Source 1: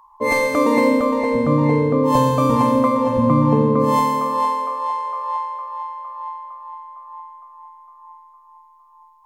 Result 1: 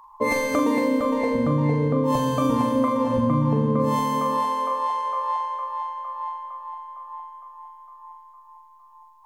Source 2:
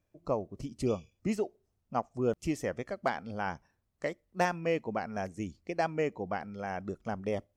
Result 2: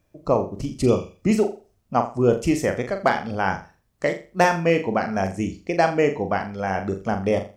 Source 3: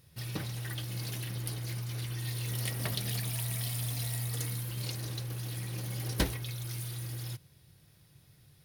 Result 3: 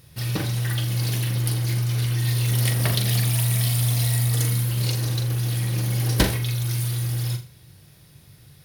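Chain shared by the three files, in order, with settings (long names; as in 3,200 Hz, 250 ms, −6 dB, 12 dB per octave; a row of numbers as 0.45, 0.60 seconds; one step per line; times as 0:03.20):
downward compressor 5 to 1, threshold −20 dBFS
flutter between parallel walls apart 7.1 metres, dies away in 0.33 s
loudness normalisation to −23 LKFS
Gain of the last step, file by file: +1.5, +11.0, +10.0 decibels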